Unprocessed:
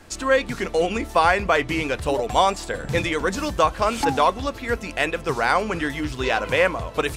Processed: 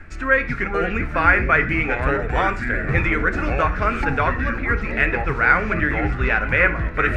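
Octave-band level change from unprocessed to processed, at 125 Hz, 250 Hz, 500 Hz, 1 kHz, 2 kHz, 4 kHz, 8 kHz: +7.5 dB, +2.0 dB, -2.5 dB, -0.5 dB, +7.0 dB, -9.5 dB, under -15 dB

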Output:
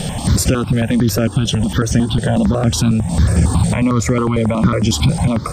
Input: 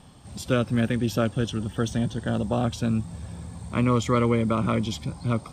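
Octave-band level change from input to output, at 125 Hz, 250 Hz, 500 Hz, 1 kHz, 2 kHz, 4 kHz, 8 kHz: +12.0 dB, +10.0 dB, +6.5 dB, +6.5 dB, +8.5 dB, +13.0 dB, +17.5 dB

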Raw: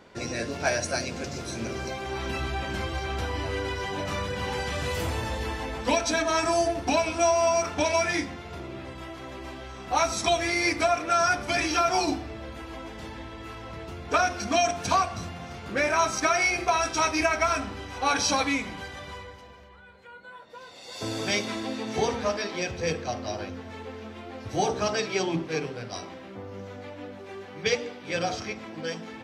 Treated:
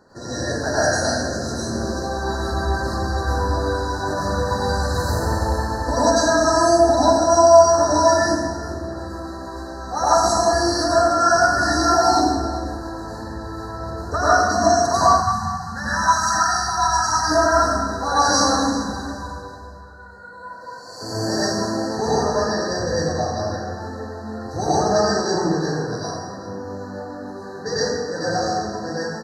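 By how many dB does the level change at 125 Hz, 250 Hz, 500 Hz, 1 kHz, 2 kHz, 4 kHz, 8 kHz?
+9.5 dB, +8.5 dB, +9.0 dB, +9.5 dB, +4.0 dB, +5.5 dB, +7.5 dB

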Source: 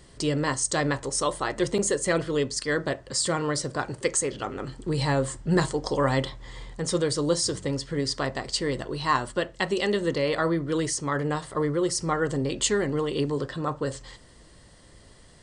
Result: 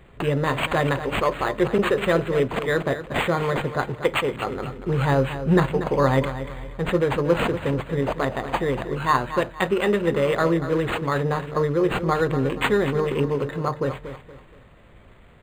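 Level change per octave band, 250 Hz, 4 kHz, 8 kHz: +3.5 dB, -2.0 dB, -16.0 dB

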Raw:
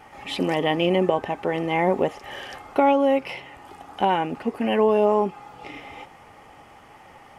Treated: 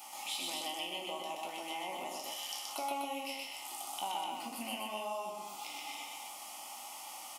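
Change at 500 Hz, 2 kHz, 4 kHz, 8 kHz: -23.0 dB, -13.0 dB, -4.5 dB, no reading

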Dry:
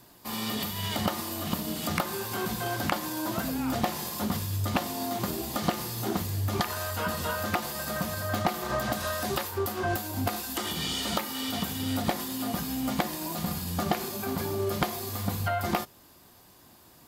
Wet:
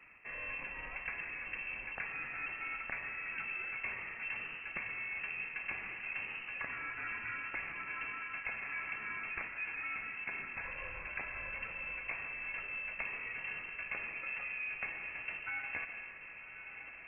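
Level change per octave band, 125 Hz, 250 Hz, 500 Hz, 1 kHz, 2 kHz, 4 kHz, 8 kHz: -27.5 dB, -28.5 dB, -22.5 dB, -16.0 dB, +0.5 dB, -24.5 dB, under -40 dB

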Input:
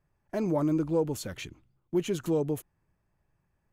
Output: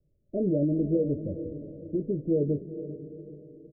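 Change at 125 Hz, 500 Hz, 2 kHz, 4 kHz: +3.0 dB, +1.5 dB, under -40 dB, under -40 dB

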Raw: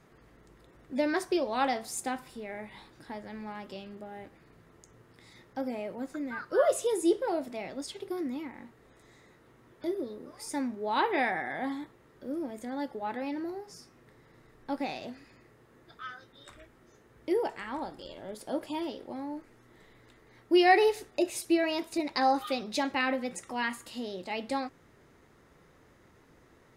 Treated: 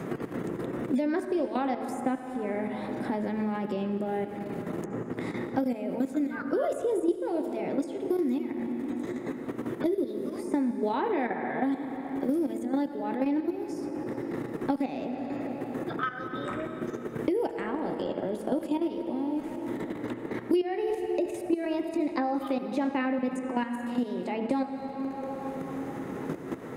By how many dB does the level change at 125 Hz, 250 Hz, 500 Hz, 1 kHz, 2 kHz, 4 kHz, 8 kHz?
+13.0 dB, +6.0 dB, +2.0 dB, -1.5 dB, -4.0 dB, -8.5 dB, no reading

